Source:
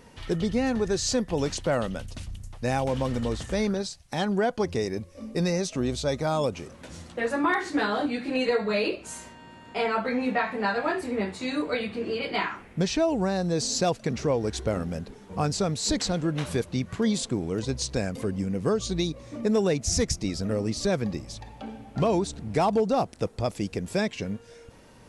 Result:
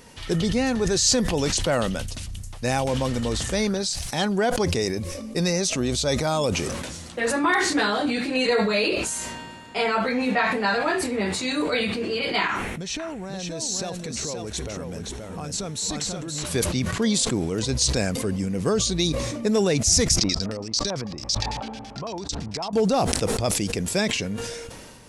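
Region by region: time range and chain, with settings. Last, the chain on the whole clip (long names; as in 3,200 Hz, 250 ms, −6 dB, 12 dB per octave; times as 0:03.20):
0:12.47–0:16.45: notch filter 4,800 Hz, Q 8.1 + downward compressor 5 to 1, threshold −33 dBFS + single-tap delay 525 ms −4.5 dB
0:20.18–0:22.73: high-shelf EQ 2,400 Hz +10.5 dB + downward compressor 5 to 1, threshold −35 dBFS + auto-filter low-pass square 9 Hz 1,000–5,200 Hz
whole clip: high-shelf EQ 2,900 Hz +9 dB; level that may fall only so fast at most 30 dB per second; level +1.5 dB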